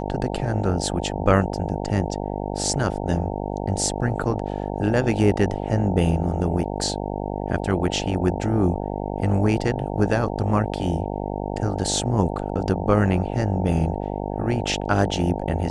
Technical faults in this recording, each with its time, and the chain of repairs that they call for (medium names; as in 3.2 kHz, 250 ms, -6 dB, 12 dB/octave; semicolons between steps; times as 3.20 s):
buzz 50 Hz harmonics 18 -28 dBFS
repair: de-hum 50 Hz, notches 18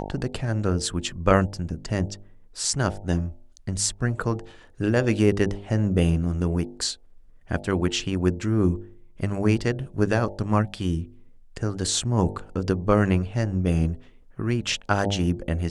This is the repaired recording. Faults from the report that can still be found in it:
nothing left